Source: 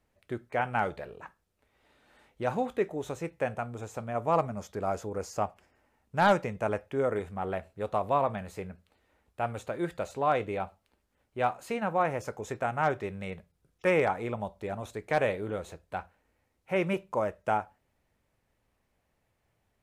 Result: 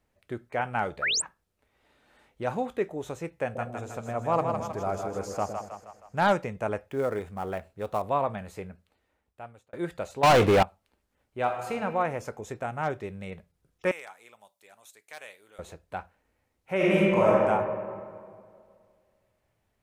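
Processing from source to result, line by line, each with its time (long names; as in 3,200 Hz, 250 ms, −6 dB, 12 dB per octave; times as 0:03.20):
0:01.02–0:01.22: sound drawn into the spectrogram rise 1,200–9,200 Hz −26 dBFS
0:03.44–0:06.25: echo with a time of its own for lows and highs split 570 Hz, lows 112 ms, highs 158 ms, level −5 dB
0:06.86–0:08.02: gap after every zero crossing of 0.053 ms
0:08.62–0:09.73: fade out
0:10.23–0:10.63: leveller curve on the samples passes 5
0:11.38–0:11.82: thrown reverb, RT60 1.4 s, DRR 4.5 dB
0:12.40–0:13.32: parametric band 1,300 Hz −3.5 dB 2.8 octaves
0:13.91–0:15.59: first difference
0:16.76–0:17.29: thrown reverb, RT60 2.1 s, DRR −8.5 dB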